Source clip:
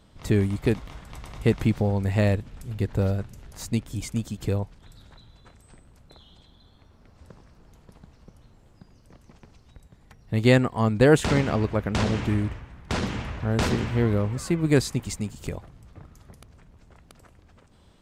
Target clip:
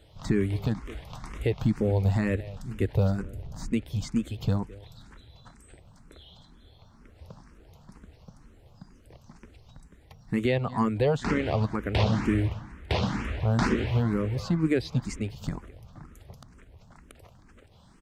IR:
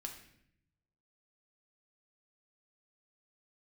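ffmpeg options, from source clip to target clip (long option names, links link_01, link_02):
-filter_complex "[0:a]asettb=1/sr,asplit=3[link_01][link_02][link_03];[link_01]atrim=end=3.224[link_04];[link_02]atrim=start=3.22:end=3.71,asetpts=PTS-STARTPTS,afade=type=in:duration=0.004:curve=qsin,afade=type=out:start_time=0.486:duration=0.004:curve=qsin,tiltshelf=frequency=730:gain=6.5[link_05];[link_03]atrim=start=3.706[link_06];[link_04][link_05]acrossfade=duration=0.004:curve1=hsin:curve2=qsin[link_07];[link_07][link_06]acrossfade=duration=0.004:curve1=qsin:curve2=hsin,acrossover=split=5300[link_08][link_09];[link_08]aecho=1:1:212:0.075[link_10];[link_09]acompressor=threshold=-55dB:ratio=6[link_11];[link_10][link_11]amix=inputs=2:normalize=0,alimiter=limit=-14.5dB:level=0:latency=1:release=246,asplit=2[link_12][link_13];[link_13]afreqshift=2.1[link_14];[link_12][link_14]amix=inputs=2:normalize=1,volume=3.5dB"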